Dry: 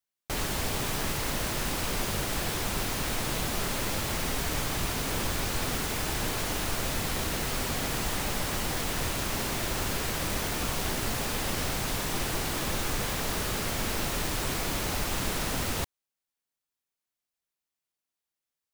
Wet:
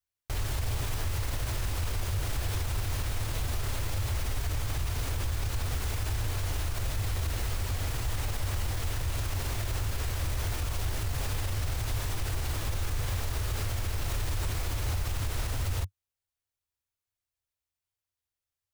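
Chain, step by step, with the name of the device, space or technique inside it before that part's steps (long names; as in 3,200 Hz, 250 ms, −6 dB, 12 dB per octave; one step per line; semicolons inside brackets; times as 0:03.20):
car stereo with a boomy subwoofer (low shelf with overshoot 130 Hz +10.5 dB, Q 3; brickwall limiter −19.5 dBFS, peak gain reduction 10 dB)
level −3 dB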